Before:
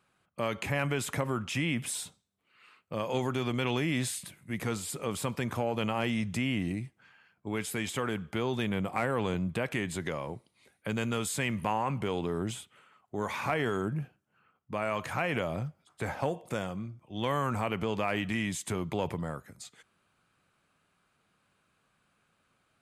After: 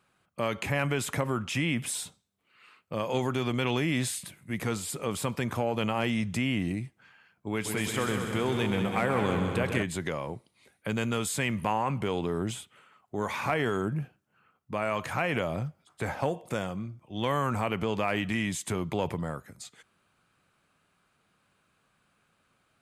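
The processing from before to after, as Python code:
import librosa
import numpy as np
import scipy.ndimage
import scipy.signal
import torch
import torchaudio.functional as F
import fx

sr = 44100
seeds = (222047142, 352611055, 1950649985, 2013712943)

y = fx.echo_heads(x, sr, ms=65, heads='second and third', feedback_pct=64, wet_db=-8.0, at=(7.64, 9.82), fade=0.02)
y = y * 10.0 ** (2.0 / 20.0)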